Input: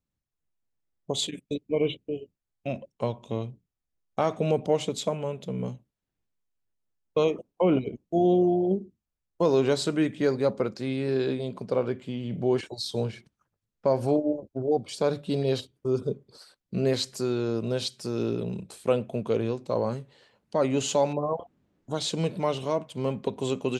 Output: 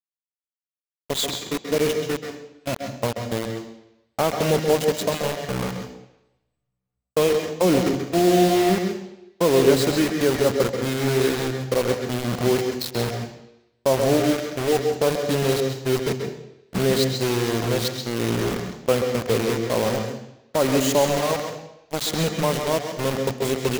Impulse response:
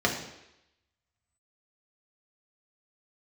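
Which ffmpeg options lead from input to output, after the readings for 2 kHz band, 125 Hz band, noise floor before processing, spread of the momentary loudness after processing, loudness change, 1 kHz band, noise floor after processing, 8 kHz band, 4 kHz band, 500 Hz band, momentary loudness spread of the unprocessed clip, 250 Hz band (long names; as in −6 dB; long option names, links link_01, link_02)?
+12.0 dB, +5.5 dB, −85 dBFS, 11 LU, +5.5 dB, +6.5 dB, −85 dBFS, +10.0 dB, +7.5 dB, +5.0 dB, 10 LU, +5.0 dB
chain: -filter_complex "[0:a]acrusher=bits=4:mix=0:aa=0.000001,agate=range=-13dB:threshold=-33dB:ratio=16:detection=peak,asplit=2[link_01][link_02];[1:a]atrim=start_sample=2205,highshelf=frequency=4100:gain=8.5,adelay=131[link_03];[link_02][link_03]afir=irnorm=-1:irlink=0,volume=-18.5dB[link_04];[link_01][link_04]amix=inputs=2:normalize=0,volume=3.5dB"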